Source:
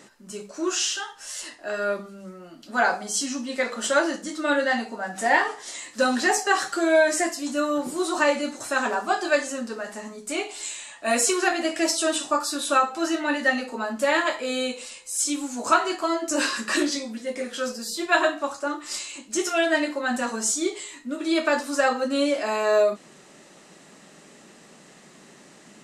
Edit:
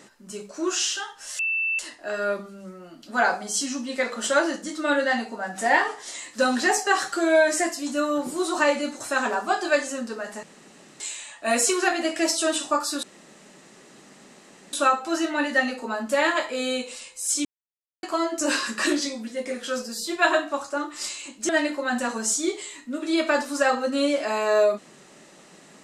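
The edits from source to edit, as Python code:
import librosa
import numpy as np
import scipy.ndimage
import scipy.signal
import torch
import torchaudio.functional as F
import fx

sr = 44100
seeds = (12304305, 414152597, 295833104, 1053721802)

y = fx.edit(x, sr, fx.insert_tone(at_s=1.39, length_s=0.4, hz=2660.0, db=-22.0),
    fx.room_tone_fill(start_s=10.03, length_s=0.57),
    fx.insert_room_tone(at_s=12.63, length_s=1.7),
    fx.silence(start_s=15.35, length_s=0.58),
    fx.cut(start_s=19.39, length_s=0.28), tone=tone)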